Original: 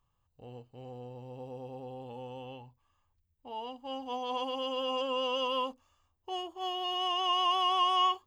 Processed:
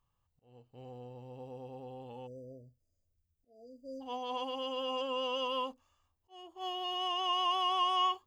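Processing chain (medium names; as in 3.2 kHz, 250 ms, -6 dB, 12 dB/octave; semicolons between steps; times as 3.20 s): spectral selection erased 2.27–4.01 s, 700–4600 Hz; slow attack 405 ms; trim -3 dB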